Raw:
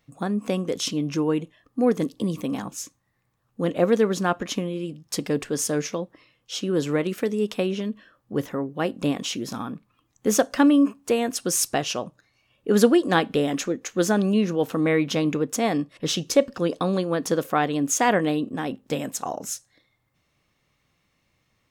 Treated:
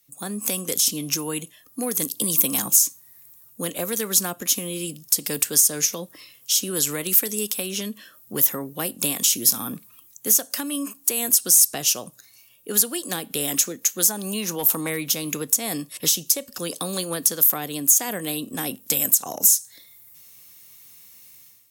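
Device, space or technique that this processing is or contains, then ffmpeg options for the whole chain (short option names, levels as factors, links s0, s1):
FM broadcast chain: -filter_complex "[0:a]asettb=1/sr,asplit=3[s0][s1][s2];[s0]atrim=end=14.054[s3];[s1]atrim=start=14.05:end=14.9,asetpts=PTS-STARTPTS,afade=t=in:d=0.004:c=qsin,afade=t=out:st=0.846:d=0.004:c=qsin,equalizer=f=910:w=4.1:g=12[s4];[s2]atrim=start=14.896[s5];[s3][s4]acrossfade=d=0.004:c1=hsin:c2=qsin[s6];[s6][s5]acrossfade=d=0.004:c1=qsin:c2=hsin,highpass=80,dynaudnorm=f=120:g=5:m=5.31,acrossover=split=200|670|7300[s7][s8][s9][s10];[s7]acompressor=threshold=0.0562:ratio=4[s11];[s8]acompressor=threshold=0.1:ratio=4[s12];[s9]acompressor=threshold=0.0708:ratio=4[s13];[s10]acompressor=threshold=0.0282:ratio=4[s14];[s11][s12][s13][s14]amix=inputs=4:normalize=0,aemphasis=mode=production:type=75fm,alimiter=limit=0.447:level=0:latency=1:release=203,asoftclip=type=hard:threshold=0.335,lowpass=f=15000:w=0.5412,lowpass=f=15000:w=1.3066,aemphasis=mode=production:type=75fm,volume=0.335"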